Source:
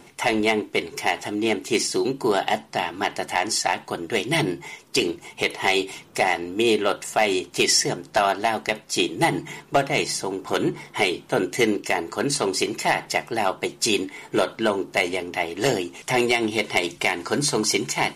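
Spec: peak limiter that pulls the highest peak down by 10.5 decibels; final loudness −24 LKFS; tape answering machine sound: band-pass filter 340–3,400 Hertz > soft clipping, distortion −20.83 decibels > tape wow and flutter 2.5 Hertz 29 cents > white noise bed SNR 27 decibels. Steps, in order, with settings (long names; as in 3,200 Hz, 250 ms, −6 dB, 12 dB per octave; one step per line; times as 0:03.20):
brickwall limiter −17 dBFS
band-pass filter 340–3,400 Hz
soft clipping −18.5 dBFS
tape wow and flutter 2.5 Hz 29 cents
white noise bed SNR 27 dB
level +7 dB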